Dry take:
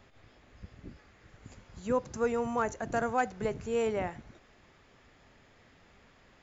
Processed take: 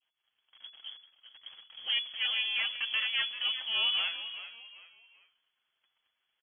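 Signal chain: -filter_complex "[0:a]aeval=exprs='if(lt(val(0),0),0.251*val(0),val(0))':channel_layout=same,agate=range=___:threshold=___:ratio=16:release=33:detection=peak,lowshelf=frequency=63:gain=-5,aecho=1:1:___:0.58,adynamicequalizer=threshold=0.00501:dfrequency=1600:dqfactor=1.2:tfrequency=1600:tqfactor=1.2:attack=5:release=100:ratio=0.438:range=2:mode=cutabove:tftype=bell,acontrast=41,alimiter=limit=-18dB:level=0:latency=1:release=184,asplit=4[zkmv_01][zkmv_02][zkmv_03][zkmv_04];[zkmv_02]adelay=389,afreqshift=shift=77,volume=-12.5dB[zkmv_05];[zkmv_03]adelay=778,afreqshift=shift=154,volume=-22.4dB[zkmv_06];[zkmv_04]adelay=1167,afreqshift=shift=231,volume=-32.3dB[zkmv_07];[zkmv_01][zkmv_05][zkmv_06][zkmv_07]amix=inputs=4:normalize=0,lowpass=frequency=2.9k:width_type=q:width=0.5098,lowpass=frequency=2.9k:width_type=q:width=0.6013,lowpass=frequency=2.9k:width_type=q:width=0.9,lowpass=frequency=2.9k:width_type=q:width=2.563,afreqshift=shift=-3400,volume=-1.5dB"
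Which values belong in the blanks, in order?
-23dB, -60dB, 7.3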